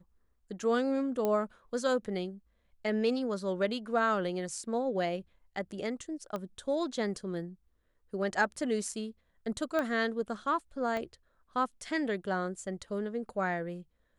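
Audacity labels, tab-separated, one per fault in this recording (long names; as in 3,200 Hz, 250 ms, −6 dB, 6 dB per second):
1.250000	1.250000	click −18 dBFS
6.360000	6.360000	click −24 dBFS
9.790000	9.790000	click −19 dBFS
10.970000	10.970000	click −23 dBFS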